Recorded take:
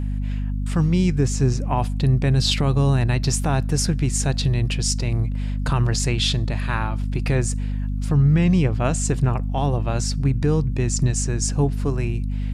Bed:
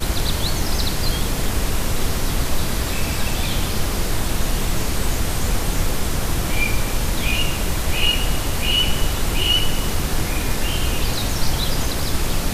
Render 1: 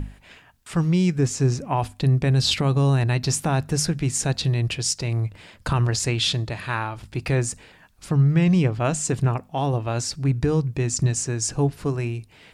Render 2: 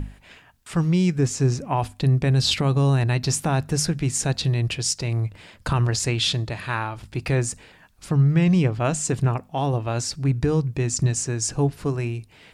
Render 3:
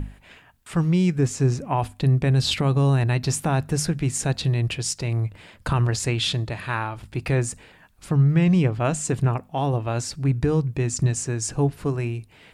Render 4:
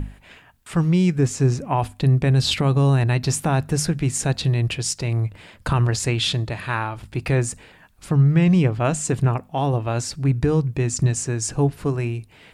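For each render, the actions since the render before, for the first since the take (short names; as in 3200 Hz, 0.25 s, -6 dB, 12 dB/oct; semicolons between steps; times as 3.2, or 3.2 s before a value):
notches 50/100/150/200/250 Hz
nothing audible
bell 5400 Hz -4.5 dB 0.99 oct
gain +2 dB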